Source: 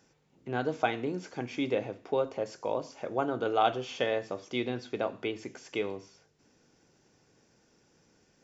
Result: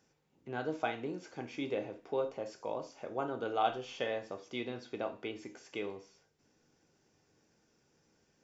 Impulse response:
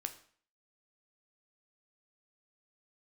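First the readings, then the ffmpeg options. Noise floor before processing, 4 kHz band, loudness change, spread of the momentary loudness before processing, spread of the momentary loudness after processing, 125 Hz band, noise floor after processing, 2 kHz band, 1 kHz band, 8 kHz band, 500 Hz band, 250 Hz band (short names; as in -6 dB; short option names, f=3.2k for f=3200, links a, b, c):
-68 dBFS, -6.0 dB, -6.0 dB, 9 LU, 10 LU, -8.0 dB, -74 dBFS, -5.5 dB, -5.0 dB, n/a, -6.0 dB, -6.5 dB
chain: -filter_complex "[1:a]atrim=start_sample=2205,atrim=end_sample=3969[a];[0:a][a]afir=irnorm=-1:irlink=0,volume=-4.5dB"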